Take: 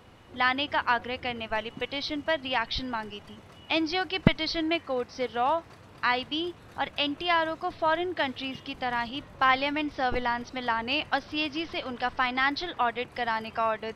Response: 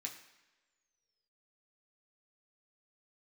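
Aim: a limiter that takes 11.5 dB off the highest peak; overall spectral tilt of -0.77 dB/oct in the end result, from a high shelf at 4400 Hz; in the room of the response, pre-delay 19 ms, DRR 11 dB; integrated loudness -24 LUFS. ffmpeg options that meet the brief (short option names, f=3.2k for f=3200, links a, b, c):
-filter_complex "[0:a]highshelf=f=4.4k:g=6,alimiter=limit=-17.5dB:level=0:latency=1,asplit=2[a][b];[1:a]atrim=start_sample=2205,adelay=19[c];[b][c]afir=irnorm=-1:irlink=0,volume=-8.5dB[d];[a][d]amix=inputs=2:normalize=0,volume=5.5dB"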